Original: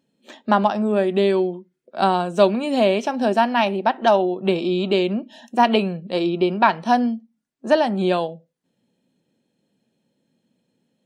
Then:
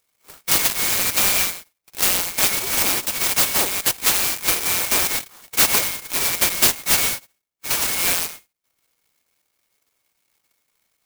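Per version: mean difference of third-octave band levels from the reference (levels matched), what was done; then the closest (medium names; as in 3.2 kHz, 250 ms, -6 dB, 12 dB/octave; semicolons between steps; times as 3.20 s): 19.5 dB: split-band scrambler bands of 2 kHz; band-stop 2.6 kHz, Q 23; sampling jitter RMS 0.12 ms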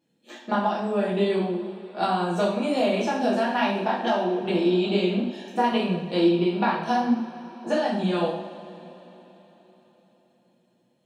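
6.5 dB: compression, threshold -18 dBFS, peak gain reduction 9 dB; flange 0.8 Hz, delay 9 ms, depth 9.9 ms, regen +69%; two-slope reverb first 0.54 s, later 4.2 s, from -20 dB, DRR -7 dB; trim -3 dB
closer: second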